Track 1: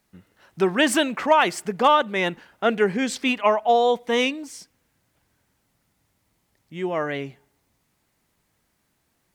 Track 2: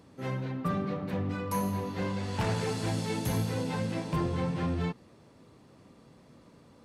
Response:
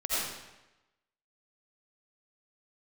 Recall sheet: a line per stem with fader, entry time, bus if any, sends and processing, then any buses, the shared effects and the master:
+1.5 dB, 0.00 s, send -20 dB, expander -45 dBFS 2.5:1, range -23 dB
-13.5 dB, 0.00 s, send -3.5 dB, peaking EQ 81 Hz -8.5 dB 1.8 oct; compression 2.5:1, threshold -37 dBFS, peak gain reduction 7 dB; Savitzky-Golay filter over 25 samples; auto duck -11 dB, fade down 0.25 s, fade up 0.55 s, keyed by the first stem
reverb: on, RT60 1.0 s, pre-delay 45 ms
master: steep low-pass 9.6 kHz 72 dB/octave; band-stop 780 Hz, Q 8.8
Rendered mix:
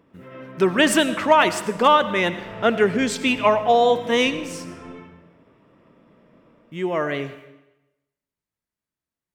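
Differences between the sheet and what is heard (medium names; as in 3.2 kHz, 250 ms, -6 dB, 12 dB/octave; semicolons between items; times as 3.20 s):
stem 2 -13.5 dB -> -3.5 dB; master: missing steep low-pass 9.6 kHz 72 dB/octave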